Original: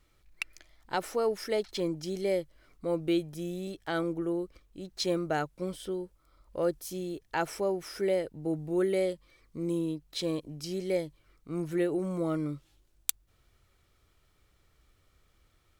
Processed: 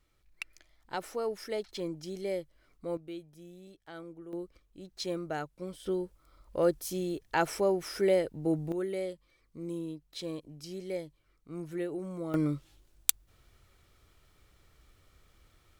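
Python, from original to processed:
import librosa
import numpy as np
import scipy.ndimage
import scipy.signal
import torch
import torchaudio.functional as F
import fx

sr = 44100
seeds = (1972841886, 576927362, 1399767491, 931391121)

y = fx.gain(x, sr, db=fx.steps((0.0, -5.0), (2.97, -14.5), (4.33, -5.5), (5.86, 2.5), (8.72, -6.5), (12.34, 4.0)))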